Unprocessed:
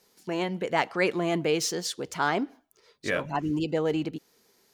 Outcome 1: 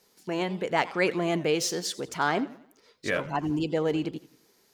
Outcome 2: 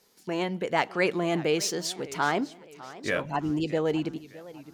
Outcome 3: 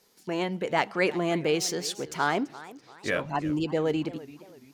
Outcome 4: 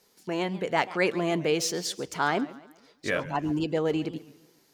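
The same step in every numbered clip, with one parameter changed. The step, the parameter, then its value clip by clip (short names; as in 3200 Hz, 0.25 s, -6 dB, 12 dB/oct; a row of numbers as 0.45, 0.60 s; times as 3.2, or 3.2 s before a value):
warbling echo, time: 88, 609, 340, 138 ms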